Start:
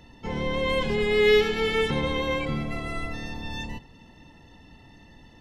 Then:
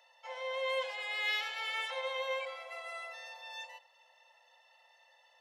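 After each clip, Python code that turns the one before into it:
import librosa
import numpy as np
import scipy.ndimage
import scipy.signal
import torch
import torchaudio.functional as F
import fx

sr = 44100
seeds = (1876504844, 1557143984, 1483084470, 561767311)

y = scipy.signal.sosfilt(scipy.signal.cheby1(8, 1.0, 510.0, 'highpass', fs=sr, output='sos'), x)
y = F.gain(torch.from_numpy(y), -7.5).numpy()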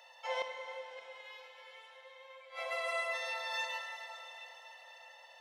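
y = fx.gate_flip(x, sr, shuts_db=-32.0, range_db=-27)
y = fx.rev_plate(y, sr, seeds[0], rt60_s=4.4, hf_ratio=0.95, predelay_ms=0, drr_db=3.0)
y = F.gain(torch.from_numpy(y), 6.5).numpy()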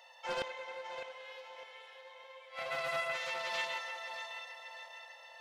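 y = fx.echo_feedback(x, sr, ms=606, feedback_pct=39, wet_db=-8.5)
y = fx.doppler_dist(y, sr, depth_ms=0.43)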